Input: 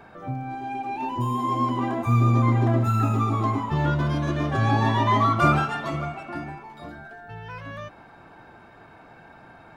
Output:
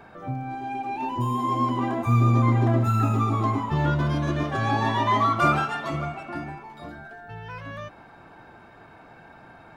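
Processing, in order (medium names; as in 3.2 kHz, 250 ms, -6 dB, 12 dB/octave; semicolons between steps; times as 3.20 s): 4.43–5.90 s: bass shelf 230 Hz -7 dB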